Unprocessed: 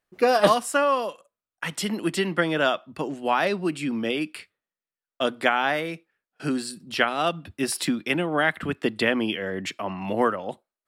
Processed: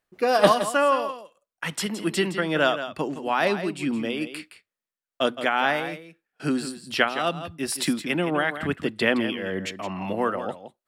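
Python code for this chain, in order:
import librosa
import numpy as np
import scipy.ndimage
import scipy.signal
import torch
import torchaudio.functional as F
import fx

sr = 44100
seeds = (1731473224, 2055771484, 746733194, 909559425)

p1 = x * (1.0 - 0.44 / 2.0 + 0.44 / 2.0 * np.cos(2.0 * np.pi * 2.3 * (np.arange(len(x)) / sr)))
p2 = p1 + fx.echo_single(p1, sr, ms=167, db=-11.0, dry=0)
y = F.gain(torch.from_numpy(p2), 1.5).numpy()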